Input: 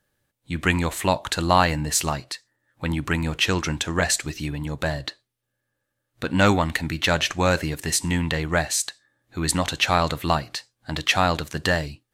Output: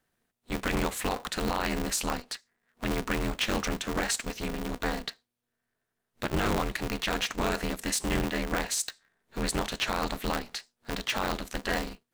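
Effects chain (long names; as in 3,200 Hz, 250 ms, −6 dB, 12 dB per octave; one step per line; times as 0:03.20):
brickwall limiter −13.5 dBFS, peak gain reduction 10 dB
ring modulator with a square carrier 120 Hz
level −4.5 dB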